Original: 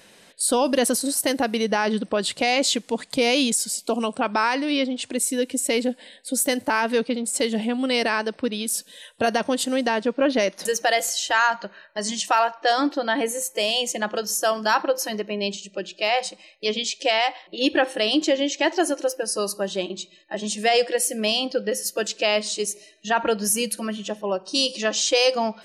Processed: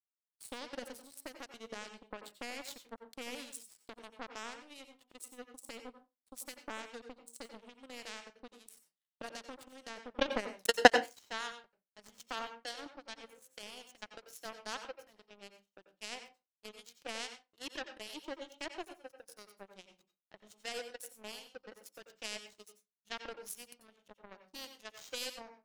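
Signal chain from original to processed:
0:10.16–0:10.88: transient designer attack +10 dB, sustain +6 dB
in parallel at +1 dB: downward compressor, threshold −28 dBFS, peak gain reduction 18.5 dB
on the sum: power curve on the samples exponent 3
two-band tremolo in antiphase 2.4 Hz, depth 50%, crossover 2,300 Hz
on a send at −8 dB: low shelf with overshoot 110 Hz −12 dB, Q 1.5 + convolution reverb RT60 0.25 s, pre-delay 85 ms

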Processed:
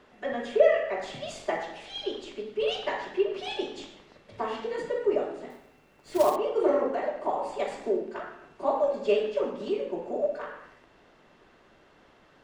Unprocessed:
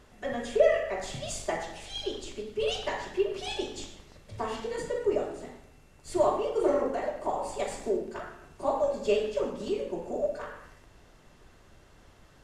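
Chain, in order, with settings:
three-way crossover with the lows and the highs turned down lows −16 dB, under 180 Hz, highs −15 dB, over 4,300 Hz
0:05.50–0:06.36: floating-point word with a short mantissa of 2 bits
level +2 dB

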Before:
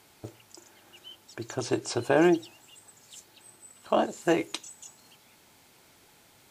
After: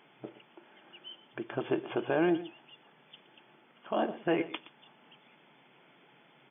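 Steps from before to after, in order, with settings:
brick-wall band-pass 120–3,500 Hz
brickwall limiter −19 dBFS, peak gain reduction 9 dB
single-tap delay 119 ms −16 dB

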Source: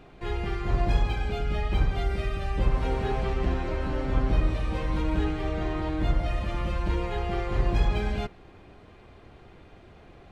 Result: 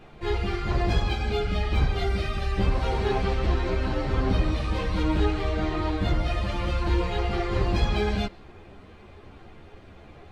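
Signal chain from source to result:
dynamic equaliser 4,400 Hz, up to +6 dB, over −59 dBFS, Q 1.7
string-ensemble chorus
level +6 dB

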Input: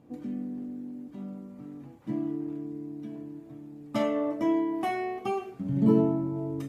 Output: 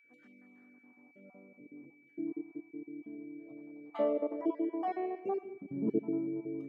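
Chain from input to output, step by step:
time-frequency cells dropped at random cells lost 32%
band-pass filter sweep 1,600 Hz → 370 Hz, 0:00.60–0:01.75
on a send: feedback echo with a low-pass in the loop 194 ms, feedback 40%, low-pass 2,800 Hz, level −15.5 dB
on the sum: gain on a spectral selection 0:03.40–0:05.38, 450–5,500 Hz +10 dB
steady tone 2,300 Hz −63 dBFS
high-shelf EQ 5,000 Hz +11 dB
level −2.5 dB

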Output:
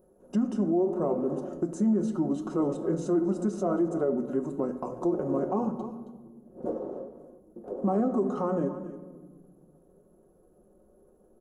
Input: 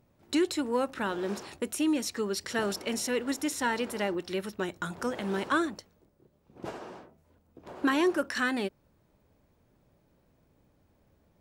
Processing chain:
single-tap delay 276 ms −17.5 dB
pitch shifter −6 semitones
comb filter 5.5 ms, depth 50%
on a send at −13 dB: convolution reverb RT60 1.3 s, pre-delay 29 ms
on the sum: flanger 0.79 Hz, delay 8.4 ms, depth 7.4 ms, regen +73%
graphic EQ with 10 bands 125 Hz −10 dB, 250 Hz +5 dB, 500 Hz +12 dB, 1,000 Hz −5 dB, 2,000 Hz −10 dB, 4,000 Hz −6 dB, 8,000 Hz −12 dB
brickwall limiter −23 dBFS, peak gain reduction 10.5 dB
flat-topped bell 3,200 Hz −15.5 dB
mains-hum notches 60/120/180/240 Hz
one half of a high-frequency compander encoder only
level +5 dB

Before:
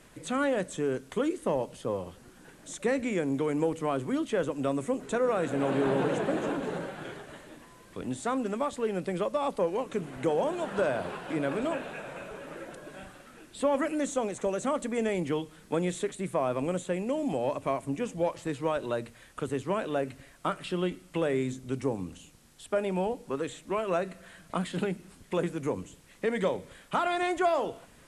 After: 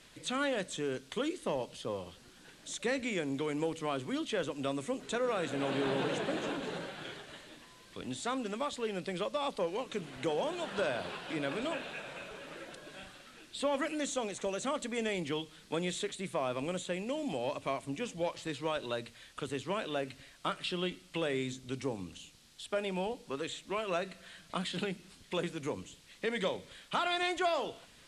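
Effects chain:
parametric band 3,900 Hz +12.5 dB 1.7 octaves
level −6.5 dB

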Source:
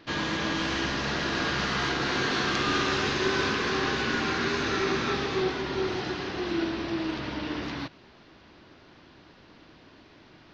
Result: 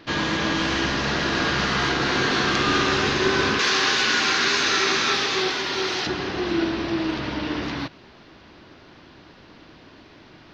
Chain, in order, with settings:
0:03.59–0:06.07: spectral tilt +3.5 dB per octave
level +5.5 dB

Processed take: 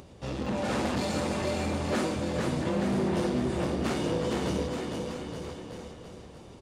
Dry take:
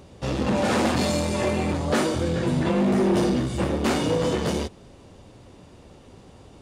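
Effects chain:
upward compression, threshold −36 dBFS
on a send: bouncing-ball delay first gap 460 ms, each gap 0.9×, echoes 5
on the sum: highs frequency-modulated by the lows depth 0.1 ms
level −8 dB

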